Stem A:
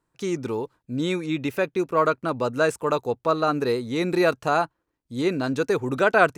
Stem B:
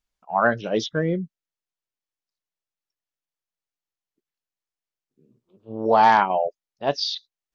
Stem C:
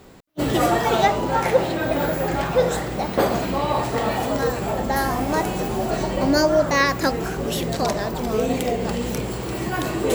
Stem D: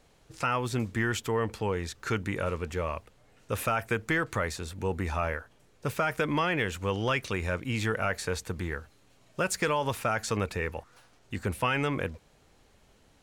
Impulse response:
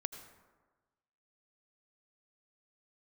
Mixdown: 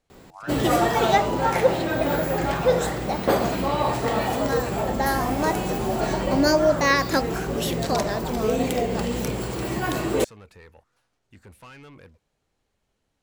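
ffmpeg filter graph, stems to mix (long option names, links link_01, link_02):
-filter_complex "[1:a]highpass=1300,volume=-15.5dB[link_01];[2:a]adelay=100,volume=-1dB[link_02];[3:a]asoftclip=type=tanh:threshold=-27.5dB,volume=-13.5dB[link_03];[link_01][link_02][link_03]amix=inputs=3:normalize=0"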